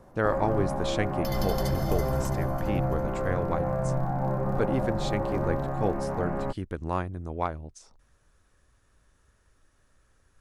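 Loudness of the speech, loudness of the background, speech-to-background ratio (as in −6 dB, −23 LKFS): −32.5 LKFS, −30.0 LKFS, −2.5 dB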